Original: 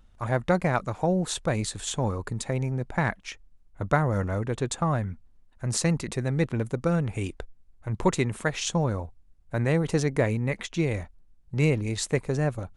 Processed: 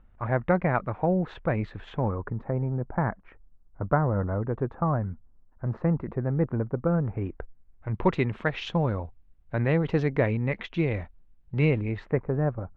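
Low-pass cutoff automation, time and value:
low-pass 24 dB/octave
1.95 s 2.3 kHz
2.40 s 1.4 kHz
7.02 s 1.4 kHz
8.21 s 3.3 kHz
11.72 s 3.3 kHz
12.24 s 1.5 kHz

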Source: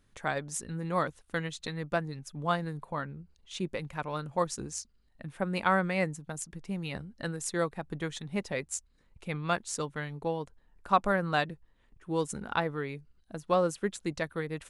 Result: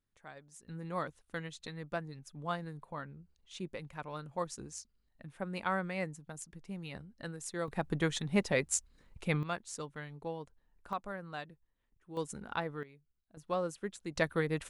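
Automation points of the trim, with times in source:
-19 dB
from 0.68 s -7.5 dB
from 7.68 s +3.5 dB
from 9.43 s -8 dB
from 10.93 s -14.5 dB
from 12.17 s -6.5 dB
from 12.83 s -19 dB
from 13.37 s -8 dB
from 14.16 s +2.5 dB

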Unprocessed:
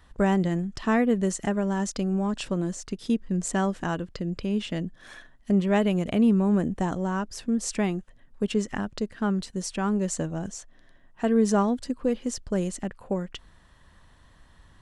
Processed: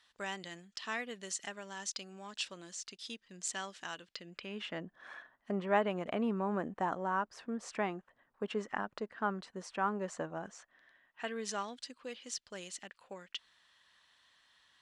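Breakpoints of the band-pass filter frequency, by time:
band-pass filter, Q 1.1
4.06 s 4.1 kHz
4.81 s 1.1 kHz
10.35 s 1.1 kHz
11.59 s 3.6 kHz

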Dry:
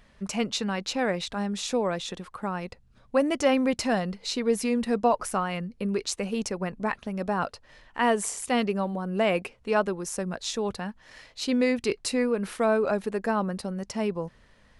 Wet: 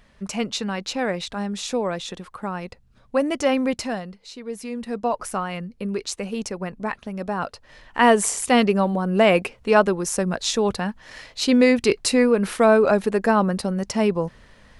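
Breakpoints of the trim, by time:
3.72 s +2 dB
4.29 s -10 dB
5.27 s +1 dB
7.40 s +1 dB
8.00 s +8 dB

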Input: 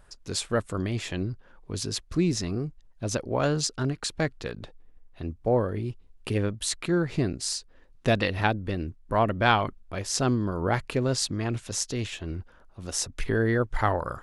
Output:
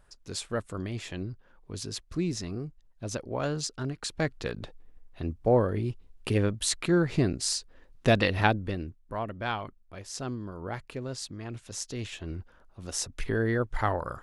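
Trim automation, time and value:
3.90 s -5.5 dB
4.47 s +1 dB
8.51 s +1 dB
9.21 s -10.5 dB
11.40 s -10.5 dB
12.24 s -3 dB

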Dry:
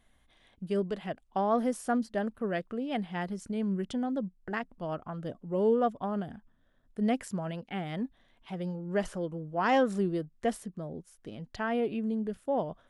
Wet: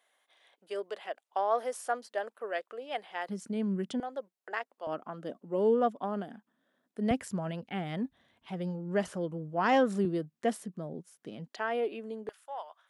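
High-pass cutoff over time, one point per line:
high-pass 24 dB/octave
460 Hz
from 3.29 s 160 Hz
from 4.00 s 460 Hz
from 4.87 s 210 Hz
from 7.11 s 66 Hz
from 10.05 s 140 Hz
from 11.48 s 320 Hz
from 12.29 s 880 Hz

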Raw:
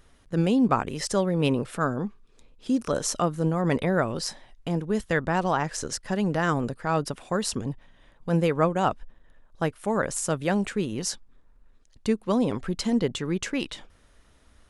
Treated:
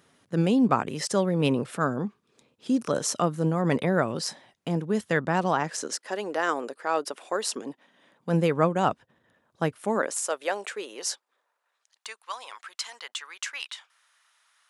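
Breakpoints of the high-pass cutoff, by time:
high-pass 24 dB/octave
5.45 s 120 Hz
6.10 s 340 Hz
7.45 s 340 Hz
8.55 s 110 Hz
9.72 s 110 Hz
10.24 s 450 Hz
11.10 s 450 Hz
12.25 s 990 Hz

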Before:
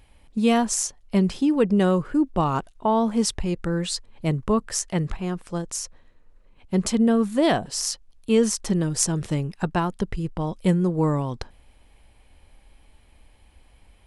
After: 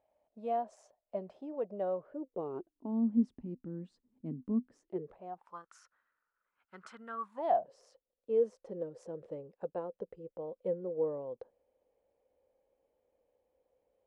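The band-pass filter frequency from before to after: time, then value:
band-pass filter, Q 9.2
2.08 s 630 Hz
2.94 s 250 Hz
4.71 s 250 Hz
5.70 s 1.4 kHz
7.08 s 1.4 kHz
7.75 s 510 Hz

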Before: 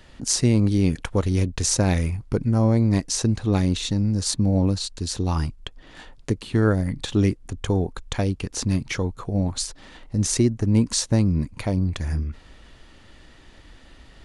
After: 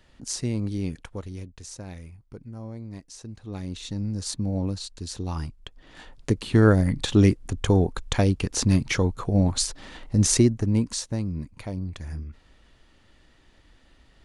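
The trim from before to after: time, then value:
0.84 s -9 dB
1.63 s -19 dB
3.25 s -19 dB
4.03 s -7 dB
5.63 s -7 dB
6.47 s +2.5 dB
10.33 s +2.5 dB
11.11 s -9 dB

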